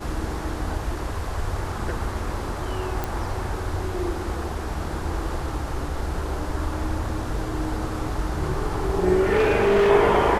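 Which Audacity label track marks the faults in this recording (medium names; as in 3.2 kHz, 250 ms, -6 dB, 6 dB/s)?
3.040000	3.040000	pop
9.190000	9.910000	clipped -15 dBFS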